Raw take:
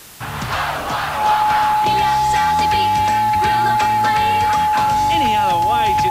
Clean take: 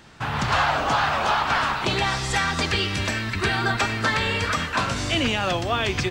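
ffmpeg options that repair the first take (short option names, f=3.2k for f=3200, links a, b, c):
-af "adeclick=t=4,bandreject=f=850:w=30,afwtdn=0.011"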